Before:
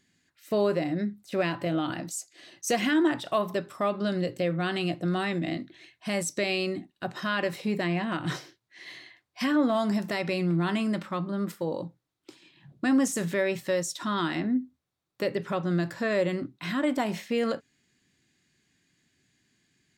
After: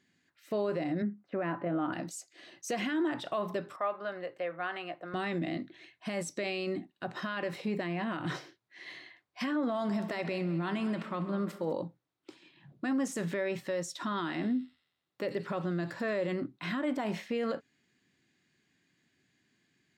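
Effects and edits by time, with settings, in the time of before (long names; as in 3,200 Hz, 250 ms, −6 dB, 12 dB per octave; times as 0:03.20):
0:01.02–0:01.93: Chebyshev band-pass filter 170–1,500 Hz
0:03.76–0:05.14: three-way crossover with the lows and the highs turned down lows −21 dB, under 550 Hz, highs −16 dB, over 2,400 Hz
0:09.67–0:11.73: echo machine with several playback heads 67 ms, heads all three, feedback 48%, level −20 dB
0:14.15–0:16.31: delay with a high-pass on its return 88 ms, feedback 56%, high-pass 5,400 Hz, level −5 dB
whole clip: brickwall limiter −23 dBFS; high-pass filter 170 Hz 6 dB per octave; high-shelf EQ 5,100 Hz −12 dB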